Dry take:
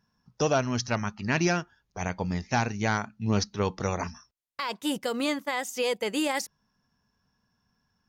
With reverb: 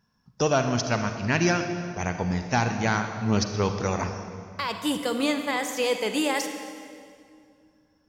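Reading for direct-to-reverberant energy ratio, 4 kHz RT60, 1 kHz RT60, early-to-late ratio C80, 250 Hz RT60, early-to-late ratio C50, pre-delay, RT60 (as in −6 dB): 6.5 dB, 1.8 s, 2.1 s, 8.0 dB, 2.8 s, 7.0 dB, 36 ms, 2.3 s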